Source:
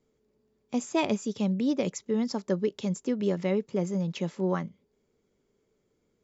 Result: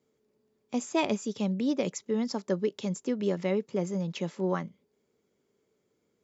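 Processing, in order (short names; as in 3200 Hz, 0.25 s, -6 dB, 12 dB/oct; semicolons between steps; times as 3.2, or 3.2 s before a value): HPF 84 Hz; low shelf 190 Hz -4.5 dB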